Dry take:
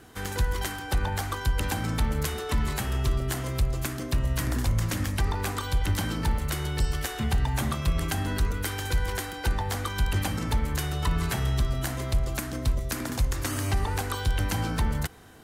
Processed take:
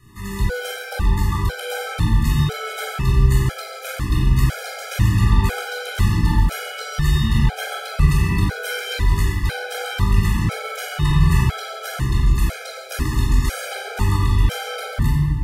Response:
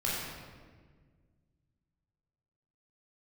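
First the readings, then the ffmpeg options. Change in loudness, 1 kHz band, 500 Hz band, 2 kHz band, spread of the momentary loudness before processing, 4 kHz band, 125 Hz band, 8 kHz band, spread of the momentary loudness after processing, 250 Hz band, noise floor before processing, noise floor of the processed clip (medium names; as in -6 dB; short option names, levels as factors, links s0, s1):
+8.0 dB, +5.0 dB, +5.0 dB, +7.0 dB, 3 LU, +5.5 dB, +9.0 dB, +2.0 dB, 10 LU, +7.5 dB, -36 dBFS, -33 dBFS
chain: -filter_complex "[0:a]acrossover=split=700|6500[s0][s1][s2];[s1]dynaudnorm=f=940:g=5:m=1.41[s3];[s0][s3][s2]amix=inputs=3:normalize=0[s4];[1:a]atrim=start_sample=2205[s5];[s4][s5]afir=irnorm=-1:irlink=0,afftfilt=real='re*gt(sin(2*PI*1*pts/sr)*(1-2*mod(floor(b*sr/1024/420),2)),0)':imag='im*gt(sin(2*PI*1*pts/sr)*(1-2*mod(floor(b*sr/1024/420),2)),0)':win_size=1024:overlap=0.75"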